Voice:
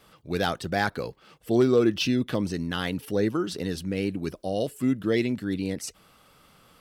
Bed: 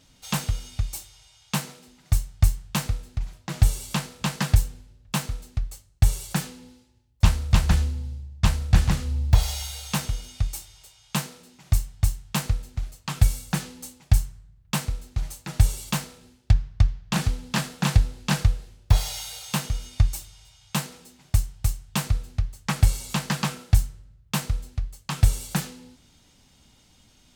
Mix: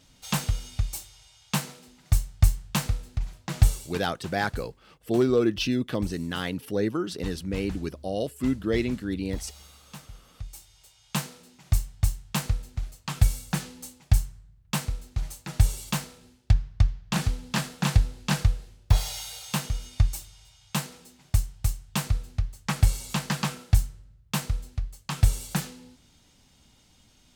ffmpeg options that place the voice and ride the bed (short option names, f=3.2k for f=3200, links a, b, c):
-filter_complex "[0:a]adelay=3600,volume=-1.5dB[a];[1:a]volume=15.5dB,afade=t=out:st=3.64:d=0.36:silence=0.133352,afade=t=in:st=10.31:d=0.88:silence=0.158489[b];[a][b]amix=inputs=2:normalize=0"